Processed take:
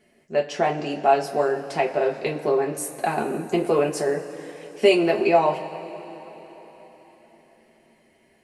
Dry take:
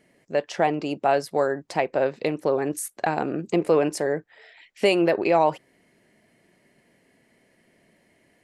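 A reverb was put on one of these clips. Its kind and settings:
coupled-rooms reverb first 0.21 s, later 4.3 s, from −22 dB, DRR −2 dB
level −3 dB

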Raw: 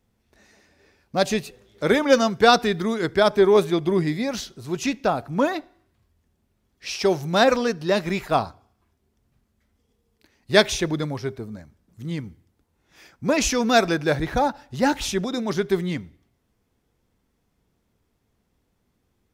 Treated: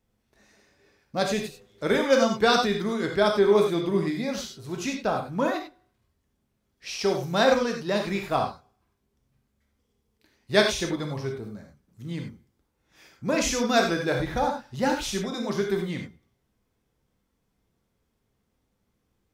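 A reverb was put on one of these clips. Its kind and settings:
reverb whose tail is shaped and stops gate 120 ms flat, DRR 2 dB
level −5.5 dB

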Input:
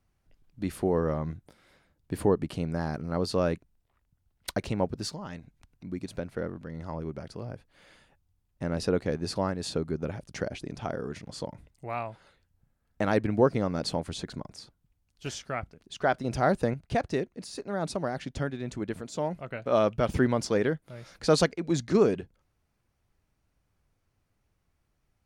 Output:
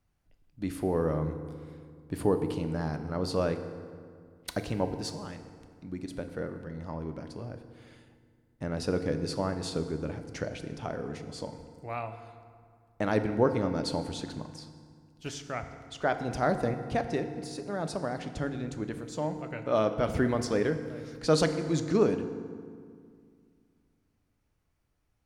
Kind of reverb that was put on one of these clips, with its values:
feedback delay network reverb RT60 2.1 s, low-frequency decay 1.3×, high-frequency decay 0.6×, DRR 7.5 dB
level −2.5 dB

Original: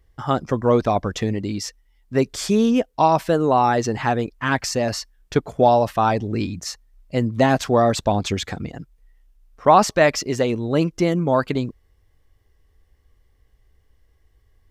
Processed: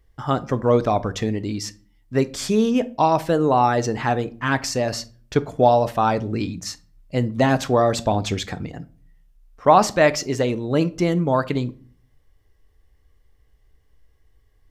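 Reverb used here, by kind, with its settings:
rectangular room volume 350 cubic metres, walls furnished, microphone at 0.41 metres
level −1 dB

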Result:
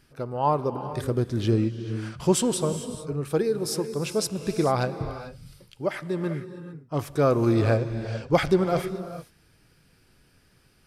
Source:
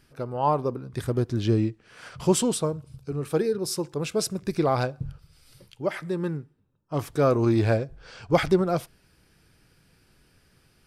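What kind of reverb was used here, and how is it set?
reverb whose tail is shaped and stops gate 470 ms rising, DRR 10 dB

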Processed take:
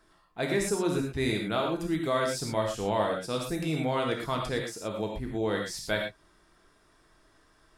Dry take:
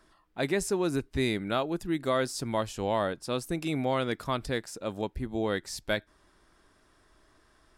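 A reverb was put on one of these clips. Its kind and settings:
reverb whose tail is shaped and stops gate 140 ms flat, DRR 0 dB
level −2 dB

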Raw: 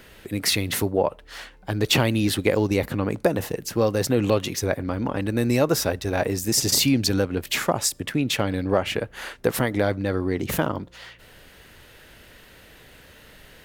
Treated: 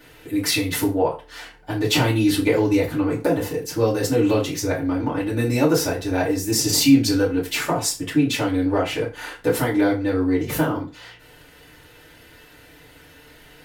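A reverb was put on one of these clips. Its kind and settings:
feedback delay network reverb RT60 0.33 s, low-frequency decay 0.9×, high-frequency decay 0.8×, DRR −7.5 dB
level −7 dB

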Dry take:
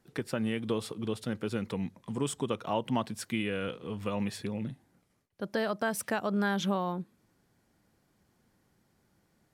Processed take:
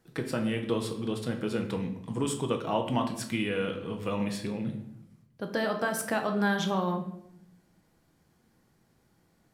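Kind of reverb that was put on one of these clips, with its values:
rectangular room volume 190 cubic metres, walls mixed, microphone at 0.64 metres
level +1 dB

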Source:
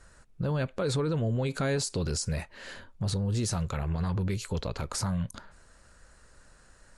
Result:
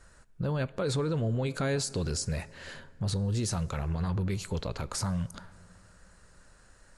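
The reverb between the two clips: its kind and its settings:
dense smooth reverb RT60 3.5 s, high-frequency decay 0.45×, DRR 19.5 dB
level −1 dB

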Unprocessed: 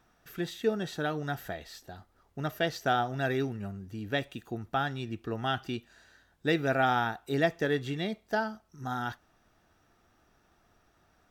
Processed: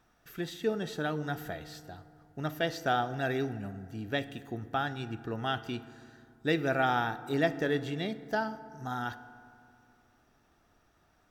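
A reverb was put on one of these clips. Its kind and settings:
feedback delay network reverb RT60 2.4 s, low-frequency decay 1.25×, high-frequency decay 0.45×, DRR 13.5 dB
level −1.5 dB

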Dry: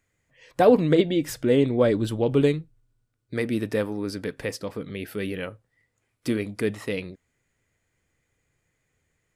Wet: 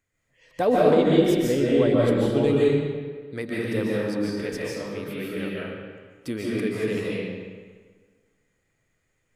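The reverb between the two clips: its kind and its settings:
comb and all-pass reverb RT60 1.6 s, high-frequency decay 0.75×, pre-delay 105 ms, DRR −6 dB
level −5.5 dB

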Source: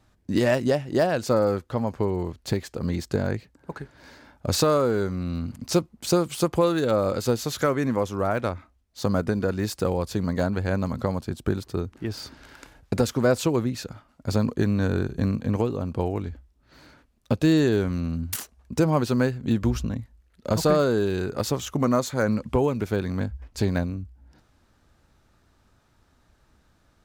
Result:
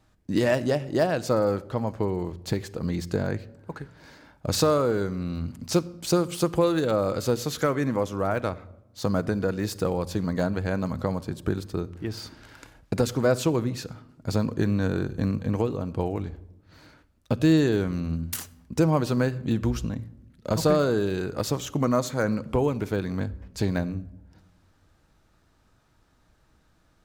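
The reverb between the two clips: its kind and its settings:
rectangular room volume 3,700 cubic metres, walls furnished, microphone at 0.58 metres
level −1.5 dB

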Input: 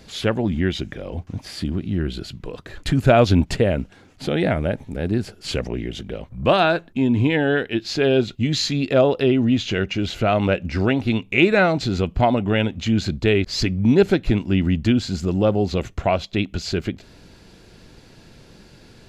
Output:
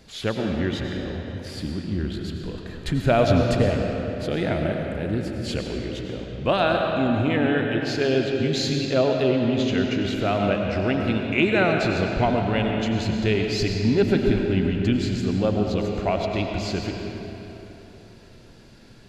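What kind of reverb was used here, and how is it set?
comb and all-pass reverb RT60 3.5 s, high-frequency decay 0.7×, pre-delay 60 ms, DRR 1.5 dB
level −5 dB

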